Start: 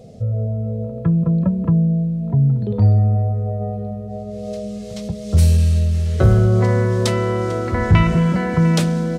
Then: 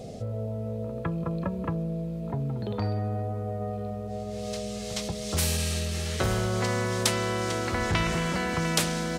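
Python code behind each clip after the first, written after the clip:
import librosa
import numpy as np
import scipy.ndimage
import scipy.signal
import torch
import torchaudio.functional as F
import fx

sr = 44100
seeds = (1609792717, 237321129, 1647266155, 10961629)

y = fx.spectral_comp(x, sr, ratio=2.0)
y = F.gain(torch.from_numpy(y), -5.0).numpy()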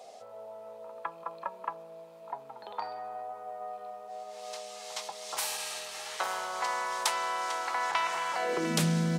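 y = fx.filter_sweep_highpass(x, sr, from_hz=890.0, to_hz=160.0, start_s=8.33, end_s=8.84, q=3.4)
y = F.gain(torch.from_numpy(y), -5.0).numpy()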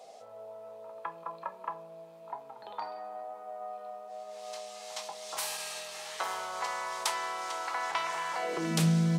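y = fx.room_shoebox(x, sr, seeds[0], volume_m3=210.0, walls='furnished', distance_m=0.62)
y = F.gain(torch.from_numpy(y), -2.5).numpy()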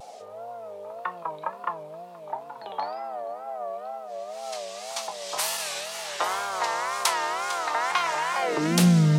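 y = fx.wow_flutter(x, sr, seeds[1], rate_hz=2.1, depth_cents=140.0)
y = y + 10.0 ** (-23.5 / 20.0) * np.pad(y, (int(475 * sr / 1000.0), 0))[:len(y)]
y = F.gain(torch.from_numpy(y), 7.5).numpy()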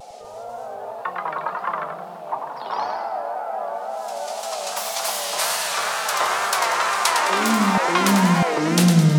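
y = fx.echo_feedback(x, sr, ms=106, feedback_pct=47, wet_db=-6.0)
y = fx.echo_pitch(y, sr, ms=245, semitones=2, count=2, db_per_echo=-3.0)
y = F.gain(torch.from_numpy(y), 3.0).numpy()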